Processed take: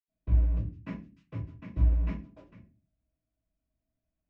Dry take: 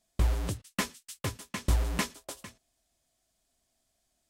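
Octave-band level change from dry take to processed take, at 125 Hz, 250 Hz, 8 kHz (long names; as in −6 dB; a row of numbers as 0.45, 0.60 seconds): +3.0 dB, −1.5 dB, below −35 dB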